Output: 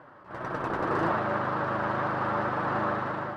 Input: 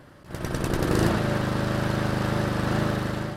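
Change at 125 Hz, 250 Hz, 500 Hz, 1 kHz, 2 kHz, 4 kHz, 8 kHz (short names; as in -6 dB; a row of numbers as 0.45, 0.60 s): -11.5 dB, -8.0 dB, -2.5 dB, +4.0 dB, -1.0 dB, -12.5 dB, under -20 dB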